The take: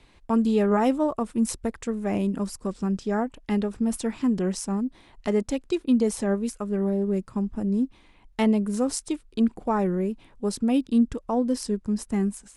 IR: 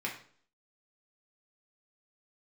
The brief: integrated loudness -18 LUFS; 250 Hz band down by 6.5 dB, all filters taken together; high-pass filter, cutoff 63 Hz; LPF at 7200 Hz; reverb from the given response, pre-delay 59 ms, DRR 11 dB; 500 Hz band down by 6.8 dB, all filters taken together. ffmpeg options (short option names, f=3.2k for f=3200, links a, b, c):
-filter_complex "[0:a]highpass=63,lowpass=7.2k,equalizer=f=250:t=o:g=-6.5,equalizer=f=500:t=o:g=-6.5,asplit=2[a][b];[1:a]atrim=start_sample=2205,adelay=59[c];[b][c]afir=irnorm=-1:irlink=0,volume=-15.5dB[d];[a][d]amix=inputs=2:normalize=0,volume=13.5dB"